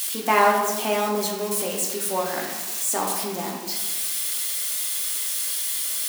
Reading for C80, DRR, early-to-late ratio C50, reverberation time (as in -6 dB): 5.5 dB, -1.0 dB, 3.5 dB, 1.2 s